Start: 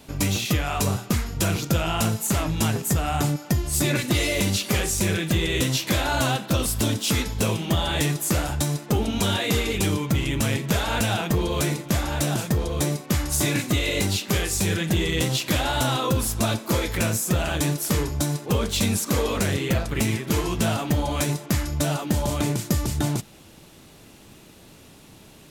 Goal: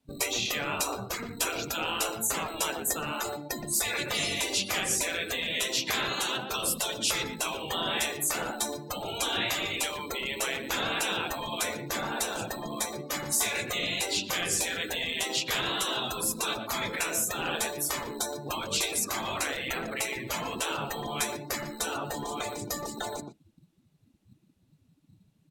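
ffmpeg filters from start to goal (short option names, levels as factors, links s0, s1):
-filter_complex "[0:a]afftdn=nr=29:nf=-34,acrossover=split=230|5400[s0][s1][s2];[s0]acrusher=samples=11:mix=1:aa=0.000001[s3];[s3][s1][s2]amix=inputs=3:normalize=0,asplit=2[s4][s5];[s5]adelay=120,highpass=300,lowpass=3400,asoftclip=type=hard:threshold=0.15,volume=0.282[s6];[s4][s6]amix=inputs=2:normalize=0,afftfilt=real='re*lt(hypot(re,im),0.158)':imag='im*lt(hypot(re,im),0.158)':win_size=1024:overlap=0.75"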